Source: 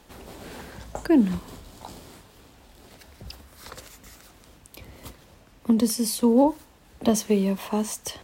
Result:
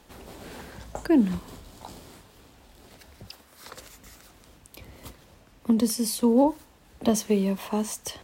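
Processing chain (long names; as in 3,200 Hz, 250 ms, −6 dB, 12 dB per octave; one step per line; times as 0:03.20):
0:03.25–0:03.79: high-pass filter 450 Hz → 140 Hz 6 dB per octave
level −1.5 dB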